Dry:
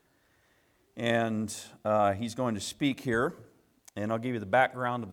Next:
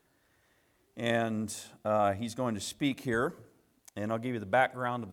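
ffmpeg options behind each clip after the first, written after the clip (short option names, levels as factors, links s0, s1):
-af "equalizer=f=11000:t=o:w=0.58:g=3.5,volume=0.794"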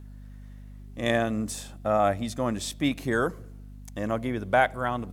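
-af "aeval=exprs='val(0)+0.00447*(sin(2*PI*50*n/s)+sin(2*PI*2*50*n/s)/2+sin(2*PI*3*50*n/s)/3+sin(2*PI*4*50*n/s)/4+sin(2*PI*5*50*n/s)/5)':c=same,volume=1.68"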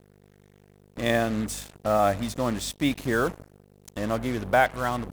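-af "acrusher=bits=5:mix=0:aa=0.5,volume=1.12"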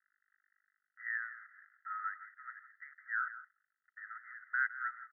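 -af "asuperpass=centerf=1600:order=20:qfactor=2.2,aecho=1:1:164:0.2,volume=0.531"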